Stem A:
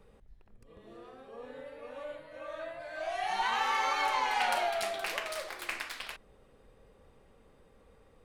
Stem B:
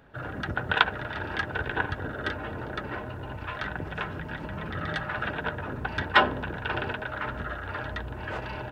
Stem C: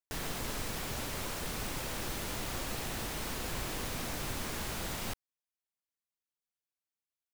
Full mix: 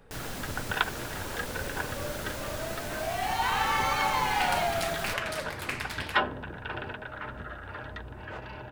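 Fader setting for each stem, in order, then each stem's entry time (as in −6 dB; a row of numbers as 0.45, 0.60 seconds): +2.5, −6.0, −1.0 decibels; 0.00, 0.00, 0.00 seconds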